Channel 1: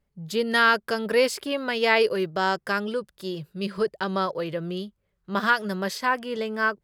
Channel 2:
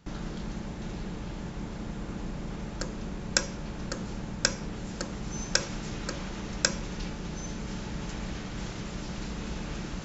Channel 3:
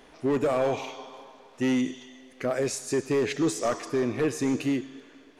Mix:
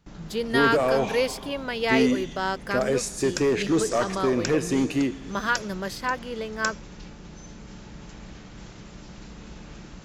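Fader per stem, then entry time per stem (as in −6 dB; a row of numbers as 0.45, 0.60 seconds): −3.5, −6.5, +2.5 decibels; 0.00, 0.00, 0.30 seconds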